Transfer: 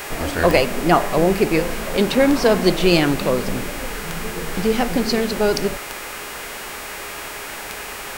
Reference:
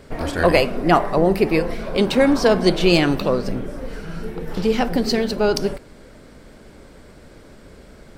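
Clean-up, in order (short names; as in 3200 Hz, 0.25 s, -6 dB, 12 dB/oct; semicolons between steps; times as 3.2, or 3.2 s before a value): de-click; de-hum 412.1 Hz, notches 39; noise print and reduce 12 dB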